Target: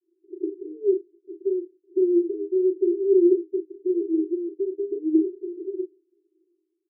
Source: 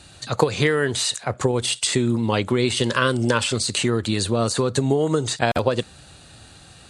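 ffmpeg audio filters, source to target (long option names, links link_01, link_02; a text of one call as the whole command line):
ffmpeg -i in.wav -filter_complex "[0:a]agate=range=-33dB:threshold=-35dB:ratio=3:detection=peak,aphaser=in_gain=1:out_gain=1:delay=4:decay=0.58:speed=0.32:type=sinusoidal,asuperpass=centerf=360:order=12:qfactor=4.1,asplit=2[link_01][link_02];[link_02]adelay=35,volume=-5.5dB[link_03];[link_01][link_03]amix=inputs=2:normalize=0,volume=3.5dB" out.wav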